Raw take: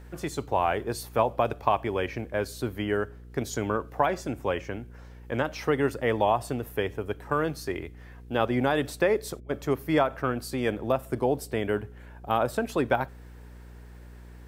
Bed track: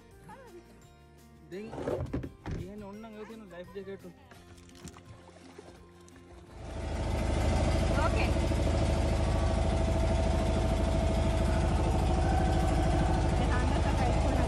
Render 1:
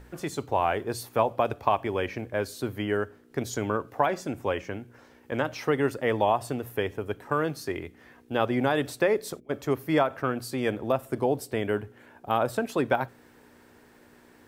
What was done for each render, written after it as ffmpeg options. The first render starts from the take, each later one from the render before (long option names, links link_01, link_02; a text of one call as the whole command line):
ffmpeg -i in.wav -af "bandreject=frequency=60:width_type=h:width=4,bandreject=frequency=120:width_type=h:width=4,bandreject=frequency=180:width_type=h:width=4" out.wav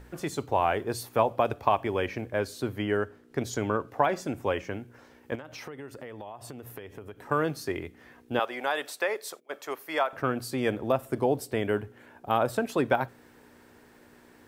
ffmpeg -i in.wav -filter_complex "[0:a]asettb=1/sr,asplit=3[link_01][link_02][link_03];[link_01]atrim=end=2.394[link_04];[link_02]atrim=start=2.39:end=4.09,asetpts=PTS-STARTPTS,afade=type=in:duration=0.004:curve=qsin,afade=type=out:start_time=1.696:duration=0.004:curve=qsin,highshelf=frequency=11000:gain=-6.5[link_05];[link_03]atrim=start=4.086[link_06];[link_04][link_05]acrossfade=duration=0.004:curve1=hsin:curve2=qsin[link_07];[link_07][link_06]acrossfade=duration=0.004:curve1=qsin:curve2=hsin,asettb=1/sr,asplit=3[link_08][link_09][link_10];[link_08]atrim=end=5.354[link_11];[link_09]atrim=start=5.35:end=7.22,asetpts=PTS-STARTPTS,afade=type=in:duration=0.004:curve=qsin,afade=type=out:start_time=1.866:duration=0.004:curve=qsin,acompressor=threshold=-38dB:ratio=8:attack=3.2:release=140:knee=1:detection=peak[link_12];[link_10]atrim=start=7.216[link_13];[link_11][link_12]acrossfade=duration=0.004:curve1=hsin:curve2=qsin[link_14];[link_14][link_13]acrossfade=duration=0.004:curve1=qsin:curve2=hsin,asettb=1/sr,asplit=3[link_15][link_16][link_17];[link_15]atrim=end=8.394[link_18];[link_16]atrim=start=8.39:end=10.13,asetpts=PTS-STARTPTS,afade=type=in:duration=0.004:curve=qsin,afade=type=out:start_time=1.736:duration=0.004:curve=qsin,highpass=680[link_19];[link_17]atrim=start=10.126[link_20];[link_18][link_19]acrossfade=duration=0.004:curve1=hsin:curve2=qsin[link_21];[link_21][link_20]acrossfade=duration=0.004:curve1=qsin:curve2=hsin" out.wav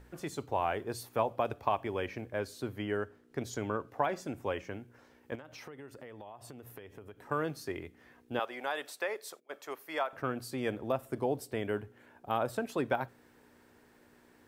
ffmpeg -i in.wav -af "volume=-6.5dB" out.wav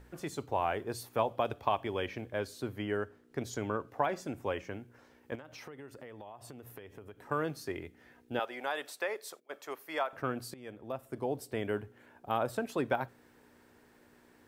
ffmpeg -i in.wav -filter_complex "[0:a]asettb=1/sr,asplit=3[link_01][link_02][link_03];[link_01]atrim=end=1.184[link_04];[link_02]atrim=start=1.18:end=2.47,asetpts=PTS-STARTPTS,afade=type=in:duration=0.004:curve=qsin,afade=type=out:start_time=1.286:duration=0.004:curve=qsin,equalizer=frequency=3300:width=3.9:gain=6[link_05];[link_03]atrim=start=2.466[link_06];[link_04][link_05]acrossfade=duration=0.004:curve1=hsin:curve2=qsin[link_07];[link_07][link_06]acrossfade=duration=0.004:curve1=qsin:curve2=hsin,asettb=1/sr,asplit=3[link_08][link_09][link_10];[link_08]atrim=end=7.754[link_11];[link_09]atrim=start=7.75:end=8.61,asetpts=PTS-STARTPTS,afade=type=in:duration=0.004:curve=qsin,afade=type=out:start_time=0.856:duration=0.004:curve=qsin,asuperstop=centerf=1100:order=4:qfactor=7.4[link_12];[link_10]atrim=start=8.606[link_13];[link_11][link_12]acrossfade=duration=0.004:curve1=hsin:curve2=qsin[link_14];[link_14][link_13]acrossfade=duration=0.004:curve1=qsin:curve2=hsin,asplit=2[link_15][link_16];[link_15]atrim=end=10.54,asetpts=PTS-STARTPTS,afade=type=out:start_time=10.536:duration=0.004:curve=hsin:silence=0.125893[link_17];[link_16]atrim=start=10.54,asetpts=PTS-STARTPTS,afade=type=in:duration=1.05:silence=0.125893[link_18];[link_17][link_18]concat=n=2:v=0:a=1" out.wav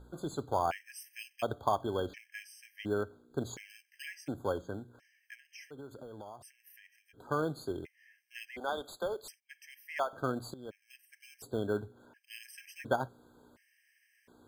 ffmpeg -i in.wav -filter_complex "[0:a]asplit=2[link_01][link_02];[link_02]acrusher=samples=23:mix=1:aa=0.000001,volume=-12dB[link_03];[link_01][link_03]amix=inputs=2:normalize=0,afftfilt=real='re*gt(sin(2*PI*0.7*pts/sr)*(1-2*mod(floor(b*sr/1024/1600),2)),0)':imag='im*gt(sin(2*PI*0.7*pts/sr)*(1-2*mod(floor(b*sr/1024/1600),2)),0)':win_size=1024:overlap=0.75" out.wav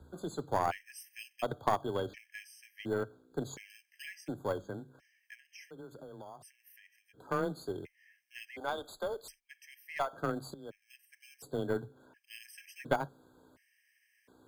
ffmpeg -i in.wav -af "afreqshift=16,aeval=exprs='0.211*(cos(1*acos(clip(val(0)/0.211,-1,1)))-cos(1*PI/2))+0.0422*(cos(4*acos(clip(val(0)/0.211,-1,1)))-cos(4*PI/2))+0.0133*(cos(6*acos(clip(val(0)/0.211,-1,1)))-cos(6*PI/2))+0.00473*(cos(7*acos(clip(val(0)/0.211,-1,1)))-cos(7*PI/2))':channel_layout=same" out.wav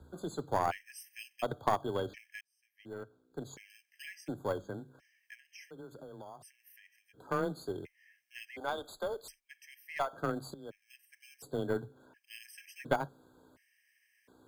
ffmpeg -i in.wav -filter_complex "[0:a]asplit=2[link_01][link_02];[link_01]atrim=end=2.41,asetpts=PTS-STARTPTS,afade=type=out:start_time=2.406:duration=0.004:curve=hsin[link_03];[link_02]atrim=start=2.41,asetpts=PTS-STARTPTS,afade=type=in:duration=1.86[link_04];[link_03][link_04]concat=n=2:v=0:a=1" out.wav